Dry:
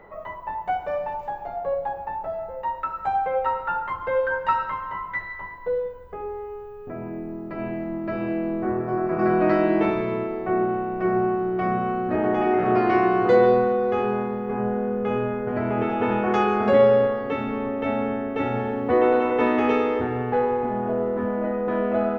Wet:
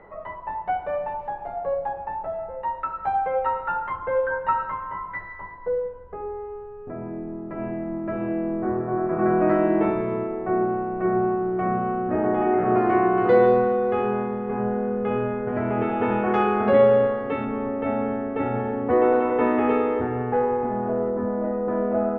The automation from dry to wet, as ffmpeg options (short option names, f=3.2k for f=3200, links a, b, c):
-af "asetnsamples=n=441:p=0,asendcmd='4 lowpass f 1700;13.18 lowpass f 2800;17.45 lowpass f 1900;21.1 lowpass f 1200',lowpass=2.6k"